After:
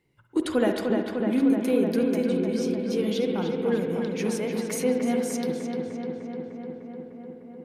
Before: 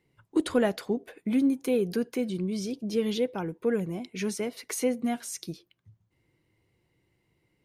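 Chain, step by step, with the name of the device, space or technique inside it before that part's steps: dub delay into a spring reverb (darkening echo 0.301 s, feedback 79%, low-pass 3500 Hz, level -4.5 dB; spring tank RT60 1.2 s, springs 51/59 ms, chirp 20 ms, DRR 5.5 dB)

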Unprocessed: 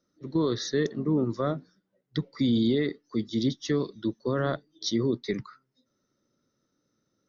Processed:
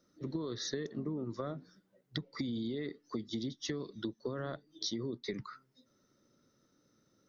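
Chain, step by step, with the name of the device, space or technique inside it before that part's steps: serial compression, peaks first (compressor 10:1, threshold -33 dBFS, peak gain reduction 13 dB; compressor 1.5:1, threshold -47 dBFS, peak gain reduction 6 dB); gain +4 dB

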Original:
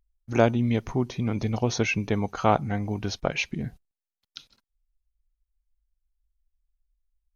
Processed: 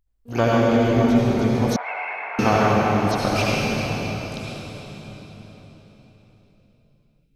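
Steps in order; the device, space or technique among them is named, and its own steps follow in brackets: shimmer-style reverb (harmoniser +12 st -10 dB; reverb RT60 4.4 s, pre-delay 66 ms, DRR -6.5 dB); 1.76–2.39 Chebyshev band-pass 700–2200 Hz, order 3; gain -1 dB

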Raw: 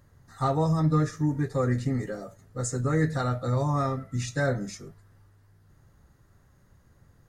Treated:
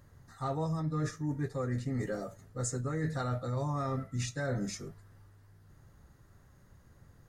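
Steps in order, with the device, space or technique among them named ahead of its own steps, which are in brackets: compression on the reversed sound (reverse; compressor 10:1, threshold -30 dBFS, peak gain reduction 11.5 dB; reverse)

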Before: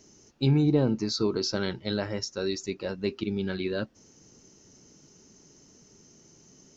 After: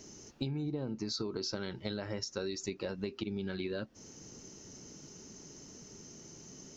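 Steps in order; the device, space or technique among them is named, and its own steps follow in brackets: serial compression, leveller first (compressor 2.5:1, threshold -29 dBFS, peak gain reduction 7.5 dB; compressor 5:1, threshold -39 dBFS, peak gain reduction 13 dB); gain +4.5 dB

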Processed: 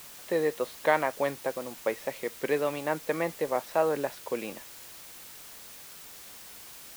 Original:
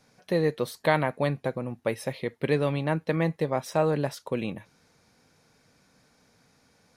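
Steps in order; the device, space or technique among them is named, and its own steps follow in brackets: wax cylinder (BPF 370–2800 Hz; wow and flutter; white noise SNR 15 dB)

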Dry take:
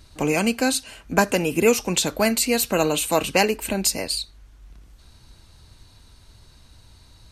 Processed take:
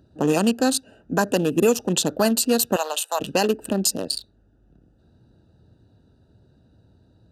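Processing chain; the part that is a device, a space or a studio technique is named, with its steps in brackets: Wiener smoothing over 41 samples; PA system with an anti-feedback notch (HPF 140 Hz 12 dB/oct; Butterworth band-stop 2200 Hz, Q 2.7; limiter -12.5 dBFS, peak gain reduction 8 dB); 2.76–3.2 HPF 660 Hz 24 dB/oct; gain +4 dB

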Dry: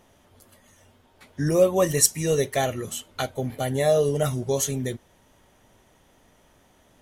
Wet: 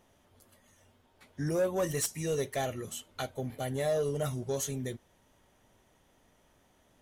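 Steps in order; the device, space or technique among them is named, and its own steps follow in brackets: saturation between pre-emphasis and de-emphasis (high shelf 7800 Hz +8.5 dB; soft clip -15 dBFS, distortion -11 dB; high shelf 7800 Hz -8.5 dB); gain -7.5 dB

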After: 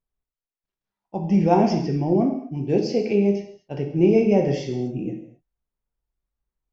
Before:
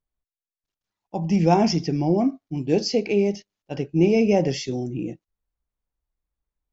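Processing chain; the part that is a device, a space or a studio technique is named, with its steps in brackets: through cloth (high shelf 3800 Hz -13.5 dB); non-linear reverb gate 0.28 s falling, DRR 3 dB; gain -1 dB

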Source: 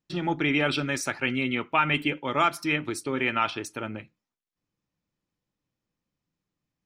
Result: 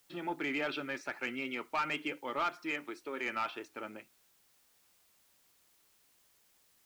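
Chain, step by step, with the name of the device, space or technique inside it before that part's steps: 2.71–3.26 HPF 270 Hz 6 dB/oct; tape answering machine (BPF 320–2900 Hz; soft clip -18.5 dBFS, distortion -15 dB; wow and flutter; white noise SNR 29 dB); gain -7 dB

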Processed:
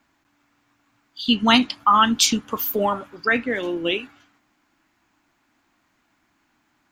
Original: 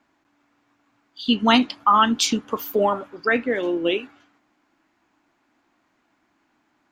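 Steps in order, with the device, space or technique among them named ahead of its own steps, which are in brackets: smiley-face EQ (low shelf 180 Hz +4.5 dB; bell 430 Hz -6.5 dB 2.2 oct; high shelf 8900 Hz +8 dB); gain +2.5 dB

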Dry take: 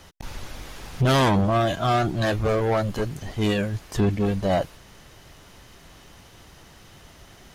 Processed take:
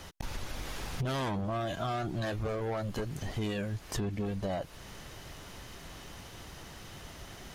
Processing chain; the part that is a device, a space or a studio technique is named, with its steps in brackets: serial compression, leveller first (compressor 2.5:1, threshold -23 dBFS, peak gain reduction 4.5 dB; compressor 4:1, threshold -35 dBFS, peak gain reduction 11.5 dB); gain +1.5 dB

